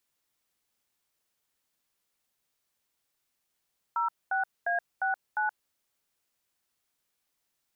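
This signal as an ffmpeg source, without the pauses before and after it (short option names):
-f lavfi -i "aevalsrc='0.0398*clip(min(mod(t,0.352),0.125-mod(t,0.352))/0.002,0,1)*(eq(floor(t/0.352),0)*(sin(2*PI*941*mod(t,0.352))+sin(2*PI*1336*mod(t,0.352)))+eq(floor(t/0.352),1)*(sin(2*PI*770*mod(t,0.352))+sin(2*PI*1477*mod(t,0.352)))+eq(floor(t/0.352),2)*(sin(2*PI*697*mod(t,0.352))+sin(2*PI*1633*mod(t,0.352)))+eq(floor(t/0.352),3)*(sin(2*PI*770*mod(t,0.352))+sin(2*PI*1477*mod(t,0.352)))+eq(floor(t/0.352),4)*(sin(2*PI*852*mod(t,0.352))+sin(2*PI*1477*mod(t,0.352))))':d=1.76:s=44100"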